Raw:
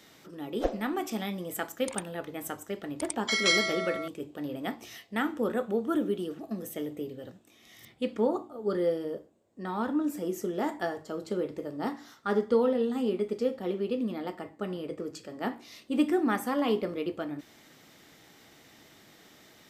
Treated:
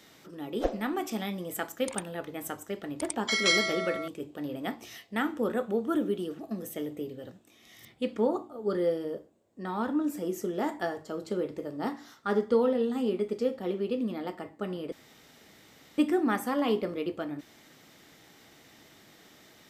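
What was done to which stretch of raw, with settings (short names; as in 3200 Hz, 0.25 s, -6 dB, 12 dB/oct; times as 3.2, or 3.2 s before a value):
14.92–15.98 room tone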